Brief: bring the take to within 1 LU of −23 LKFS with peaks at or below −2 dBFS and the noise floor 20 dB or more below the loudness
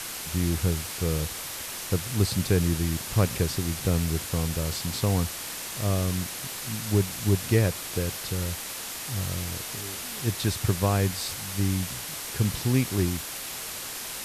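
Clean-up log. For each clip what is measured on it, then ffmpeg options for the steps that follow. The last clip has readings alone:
background noise floor −36 dBFS; target noise floor −48 dBFS; integrated loudness −27.5 LKFS; sample peak −9.0 dBFS; target loudness −23.0 LKFS
→ -af "afftdn=noise_reduction=12:noise_floor=-36"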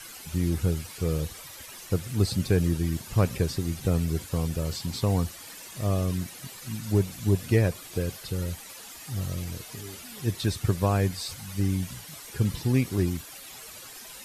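background noise floor −44 dBFS; target noise floor −49 dBFS
→ -af "afftdn=noise_reduction=6:noise_floor=-44"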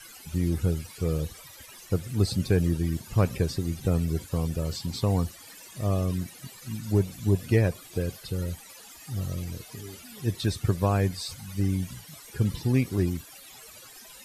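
background noise floor −48 dBFS; target noise floor −49 dBFS
→ -af "afftdn=noise_reduction=6:noise_floor=-48"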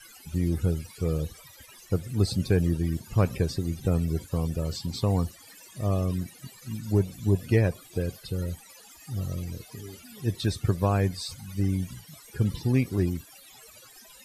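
background noise floor −51 dBFS; integrated loudness −28.5 LKFS; sample peak −9.5 dBFS; target loudness −23.0 LKFS
→ -af "volume=5.5dB"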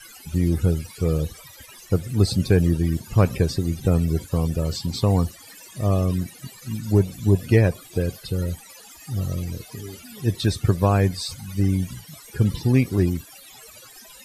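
integrated loudness −23.0 LKFS; sample peak −4.0 dBFS; background noise floor −46 dBFS

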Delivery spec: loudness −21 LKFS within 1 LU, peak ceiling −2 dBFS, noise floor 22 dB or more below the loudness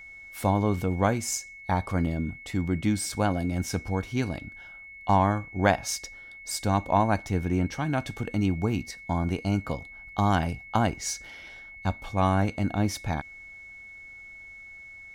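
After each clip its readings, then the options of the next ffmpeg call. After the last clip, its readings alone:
interfering tone 2,200 Hz; level of the tone −43 dBFS; integrated loudness −28.0 LKFS; sample peak −7.0 dBFS; target loudness −21.0 LKFS
→ -af "bandreject=frequency=2200:width=30"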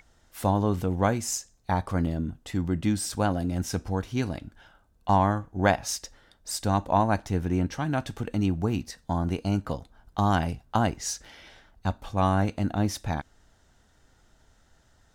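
interfering tone none found; integrated loudness −28.0 LKFS; sample peak −7.5 dBFS; target loudness −21.0 LKFS
→ -af "volume=7dB,alimiter=limit=-2dB:level=0:latency=1"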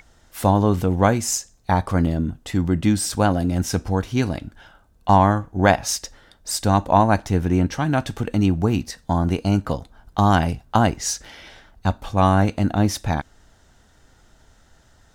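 integrated loudness −21.0 LKFS; sample peak −2.0 dBFS; background noise floor −56 dBFS

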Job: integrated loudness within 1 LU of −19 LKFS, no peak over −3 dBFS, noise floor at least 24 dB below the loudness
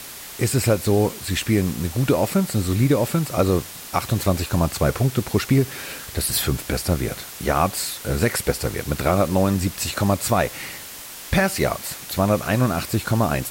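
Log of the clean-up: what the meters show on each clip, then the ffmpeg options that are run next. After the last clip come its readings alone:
background noise floor −37 dBFS; target noise floor −46 dBFS; integrated loudness −22.0 LKFS; sample peak −6.5 dBFS; target loudness −19.0 LKFS
→ -af "afftdn=noise_reduction=9:noise_floor=-37"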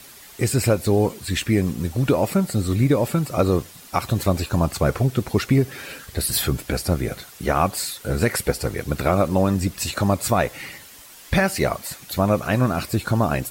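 background noise floor −44 dBFS; target noise floor −46 dBFS
→ -af "afftdn=noise_reduction=6:noise_floor=-44"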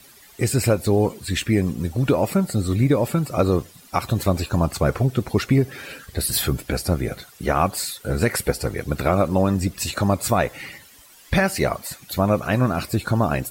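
background noise floor −49 dBFS; integrated loudness −22.0 LKFS; sample peak −7.0 dBFS; target loudness −19.0 LKFS
→ -af "volume=3dB"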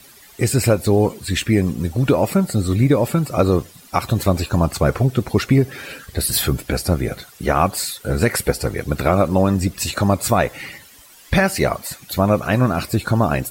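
integrated loudness −19.0 LKFS; sample peak −4.0 dBFS; background noise floor −46 dBFS

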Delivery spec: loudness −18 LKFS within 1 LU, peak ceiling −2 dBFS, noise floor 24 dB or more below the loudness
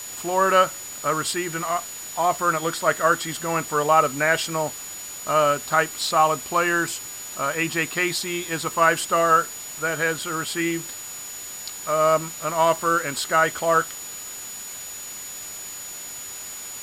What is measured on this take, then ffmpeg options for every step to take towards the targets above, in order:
interfering tone 6,900 Hz; level of the tone −35 dBFS; background noise floor −36 dBFS; target noise floor −47 dBFS; integrated loudness −23.0 LKFS; sample peak −4.5 dBFS; target loudness −18.0 LKFS
→ -af "bandreject=frequency=6900:width=30"
-af "afftdn=noise_reduction=11:noise_floor=-36"
-af "volume=5dB,alimiter=limit=-2dB:level=0:latency=1"

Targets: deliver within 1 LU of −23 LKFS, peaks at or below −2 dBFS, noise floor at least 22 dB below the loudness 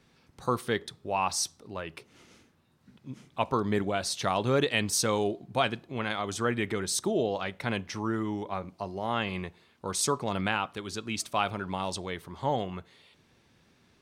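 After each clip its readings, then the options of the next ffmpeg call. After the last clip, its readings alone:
integrated loudness −30.5 LKFS; sample peak −10.5 dBFS; target loudness −23.0 LKFS
→ -af "volume=7.5dB"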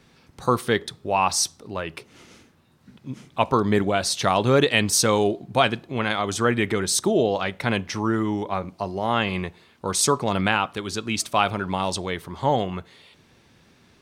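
integrated loudness −23.0 LKFS; sample peak −3.0 dBFS; background noise floor −58 dBFS

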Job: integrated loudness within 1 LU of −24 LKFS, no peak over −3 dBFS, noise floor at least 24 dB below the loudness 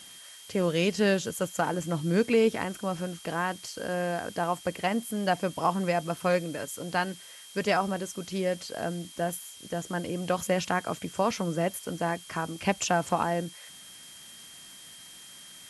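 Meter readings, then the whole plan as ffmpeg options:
interfering tone 3,200 Hz; level of the tone −50 dBFS; background noise floor −48 dBFS; target noise floor −54 dBFS; integrated loudness −29.5 LKFS; sample peak −11.5 dBFS; target loudness −24.0 LKFS
→ -af "bandreject=frequency=3200:width=30"
-af "afftdn=noise_reduction=6:noise_floor=-48"
-af "volume=5.5dB"

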